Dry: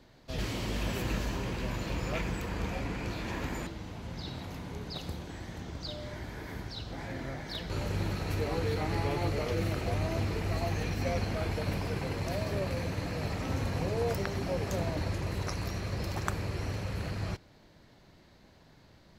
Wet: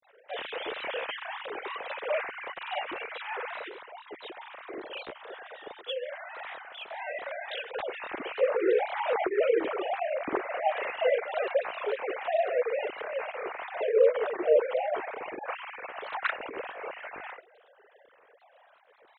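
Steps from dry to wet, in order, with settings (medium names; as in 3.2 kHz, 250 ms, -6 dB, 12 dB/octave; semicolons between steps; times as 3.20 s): formants replaced by sine waves; granulator 151 ms, grains 25 per s, spray 35 ms, pitch spread up and down by 3 st; trim +6 dB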